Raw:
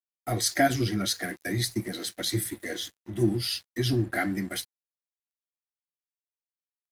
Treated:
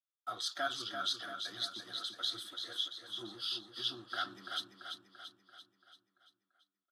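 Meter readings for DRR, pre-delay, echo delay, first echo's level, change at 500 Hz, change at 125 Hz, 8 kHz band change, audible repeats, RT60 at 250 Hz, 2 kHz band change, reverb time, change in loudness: none, none, 0.339 s, -6.5 dB, -17.0 dB, -31.5 dB, -16.5 dB, 6, none, -10.5 dB, none, -10.0 dB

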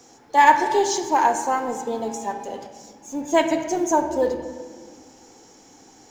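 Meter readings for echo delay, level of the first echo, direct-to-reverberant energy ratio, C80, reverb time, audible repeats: none, none, 6.0 dB, 9.5 dB, 1.7 s, none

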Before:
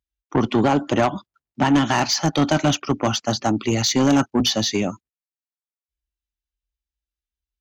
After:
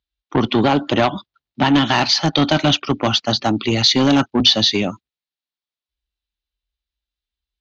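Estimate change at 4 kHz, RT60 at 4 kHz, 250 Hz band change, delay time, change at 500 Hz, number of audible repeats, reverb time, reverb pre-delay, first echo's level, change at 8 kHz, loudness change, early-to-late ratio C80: +8.5 dB, none, +2.0 dB, none, +2.0 dB, none, none, none, none, -3.0 dB, +4.0 dB, none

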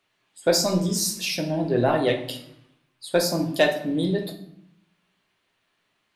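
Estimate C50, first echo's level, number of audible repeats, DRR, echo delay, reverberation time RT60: 9.5 dB, none, none, 3.0 dB, none, 0.75 s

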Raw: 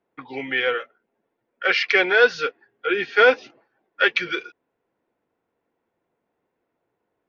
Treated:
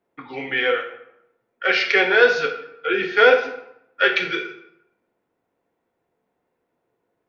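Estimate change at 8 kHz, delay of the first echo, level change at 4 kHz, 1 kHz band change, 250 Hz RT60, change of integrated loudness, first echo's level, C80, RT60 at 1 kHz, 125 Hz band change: n/a, none, +1.5 dB, +1.5 dB, 0.75 s, +1.5 dB, none, 11.0 dB, 0.80 s, n/a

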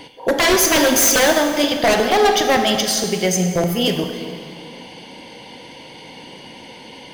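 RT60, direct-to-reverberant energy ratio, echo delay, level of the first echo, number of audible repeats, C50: 2.2 s, 5.0 dB, none, none, none, 6.0 dB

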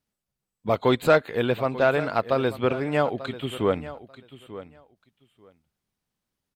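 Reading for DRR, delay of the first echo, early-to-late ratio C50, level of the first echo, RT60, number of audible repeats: none, 0.89 s, none, -15.5 dB, none, 2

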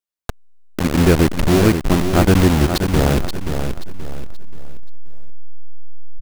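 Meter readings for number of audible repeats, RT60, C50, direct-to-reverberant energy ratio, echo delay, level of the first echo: 3, none, none, none, 0.529 s, -7.5 dB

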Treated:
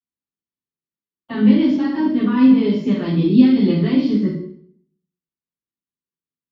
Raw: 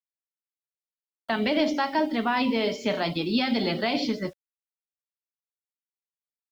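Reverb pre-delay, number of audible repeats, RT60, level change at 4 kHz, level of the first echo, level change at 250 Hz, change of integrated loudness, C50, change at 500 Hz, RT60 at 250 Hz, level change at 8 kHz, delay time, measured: 3 ms, none, 0.65 s, -4.0 dB, none, +13.5 dB, +10.0 dB, 3.0 dB, +3.0 dB, 0.70 s, n/a, none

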